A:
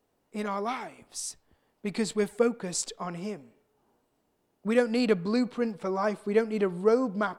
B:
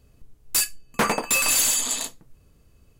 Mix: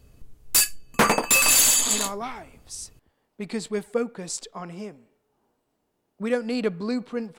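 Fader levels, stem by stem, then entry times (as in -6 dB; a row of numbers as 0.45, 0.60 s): -1.0, +3.0 dB; 1.55, 0.00 s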